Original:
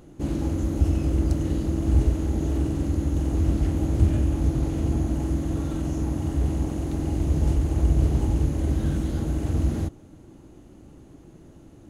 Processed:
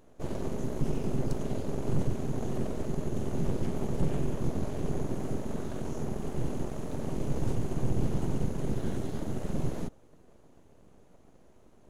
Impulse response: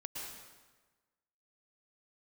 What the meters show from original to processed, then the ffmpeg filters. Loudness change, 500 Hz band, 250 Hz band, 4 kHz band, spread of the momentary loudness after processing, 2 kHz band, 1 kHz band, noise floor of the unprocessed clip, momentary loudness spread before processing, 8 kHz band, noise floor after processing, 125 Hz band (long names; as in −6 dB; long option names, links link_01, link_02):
−9.0 dB, −2.0 dB, −7.5 dB, −5.0 dB, 5 LU, −4.0 dB, −2.5 dB, −49 dBFS, 5 LU, −5.5 dB, −57 dBFS, −10.0 dB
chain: -af "aeval=exprs='abs(val(0))':channel_layout=same,aeval=exprs='0.422*(cos(1*acos(clip(val(0)/0.422,-1,1)))-cos(1*PI/2))+0.0531*(cos(6*acos(clip(val(0)/0.422,-1,1)))-cos(6*PI/2))':channel_layout=same,volume=-8.5dB"